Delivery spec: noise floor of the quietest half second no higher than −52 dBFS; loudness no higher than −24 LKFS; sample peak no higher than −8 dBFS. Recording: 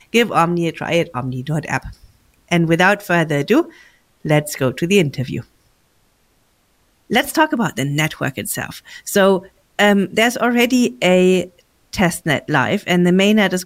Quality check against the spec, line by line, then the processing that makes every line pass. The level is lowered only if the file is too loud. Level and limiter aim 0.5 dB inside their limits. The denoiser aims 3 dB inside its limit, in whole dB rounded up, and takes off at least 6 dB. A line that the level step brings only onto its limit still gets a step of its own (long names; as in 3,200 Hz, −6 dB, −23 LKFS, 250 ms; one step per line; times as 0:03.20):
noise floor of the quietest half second −60 dBFS: in spec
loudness −17.0 LKFS: out of spec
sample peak −2.0 dBFS: out of spec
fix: level −7.5 dB